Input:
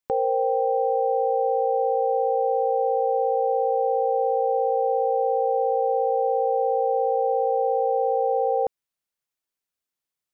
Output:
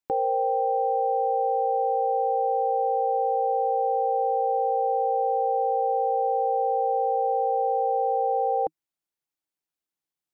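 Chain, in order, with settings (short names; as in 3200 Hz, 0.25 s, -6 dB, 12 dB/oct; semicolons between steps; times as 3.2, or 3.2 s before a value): thirty-one-band EQ 160 Hz +5 dB, 315 Hz +9 dB, 800 Hz +5 dB; gain -4.5 dB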